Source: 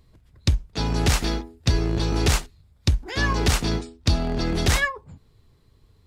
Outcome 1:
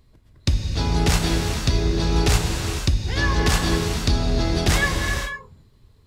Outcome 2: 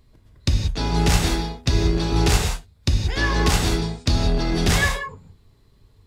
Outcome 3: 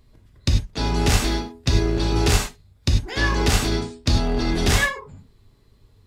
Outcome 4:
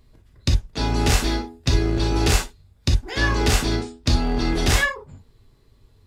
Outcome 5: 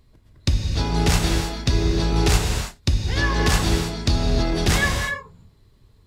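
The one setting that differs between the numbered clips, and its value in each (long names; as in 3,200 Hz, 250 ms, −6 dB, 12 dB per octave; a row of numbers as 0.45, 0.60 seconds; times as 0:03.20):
reverb whose tail is shaped and stops, gate: 530, 210, 120, 80, 350 milliseconds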